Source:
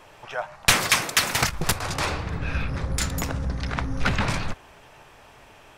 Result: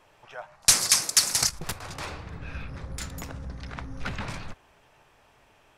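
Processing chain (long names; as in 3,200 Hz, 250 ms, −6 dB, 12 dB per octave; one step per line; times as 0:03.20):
0:00.62–0:01.59: flat-topped bell 7,100 Hz +15 dB
level −10 dB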